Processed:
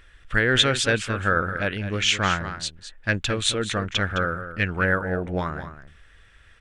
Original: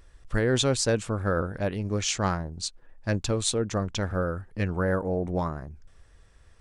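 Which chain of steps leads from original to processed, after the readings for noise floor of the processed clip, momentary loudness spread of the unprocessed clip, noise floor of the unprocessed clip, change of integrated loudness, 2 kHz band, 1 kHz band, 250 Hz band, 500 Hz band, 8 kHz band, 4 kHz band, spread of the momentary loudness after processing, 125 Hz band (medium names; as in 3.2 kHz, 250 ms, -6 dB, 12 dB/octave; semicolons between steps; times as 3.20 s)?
-53 dBFS, 10 LU, -56 dBFS, +4.5 dB, +12.0 dB, +6.0 dB, +0.5 dB, +0.5 dB, +0.5 dB, +9.0 dB, 11 LU, +0.5 dB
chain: high-order bell 2.2 kHz +12 dB; delay 212 ms -11 dB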